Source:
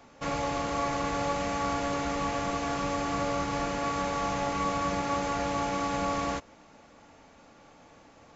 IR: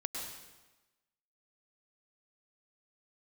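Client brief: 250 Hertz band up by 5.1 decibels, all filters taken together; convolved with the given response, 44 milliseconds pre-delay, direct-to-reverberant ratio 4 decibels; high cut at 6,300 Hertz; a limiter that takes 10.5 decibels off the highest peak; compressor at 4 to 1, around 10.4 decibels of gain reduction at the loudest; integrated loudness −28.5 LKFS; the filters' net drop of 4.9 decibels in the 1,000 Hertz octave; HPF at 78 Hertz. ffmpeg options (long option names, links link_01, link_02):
-filter_complex "[0:a]highpass=78,lowpass=6300,equalizer=frequency=250:width_type=o:gain=6.5,equalizer=frequency=1000:width_type=o:gain=-6.5,acompressor=threshold=-39dB:ratio=4,alimiter=level_in=14.5dB:limit=-24dB:level=0:latency=1,volume=-14.5dB,asplit=2[link_01][link_02];[1:a]atrim=start_sample=2205,adelay=44[link_03];[link_02][link_03]afir=irnorm=-1:irlink=0,volume=-5.5dB[link_04];[link_01][link_04]amix=inputs=2:normalize=0,volume=19dB"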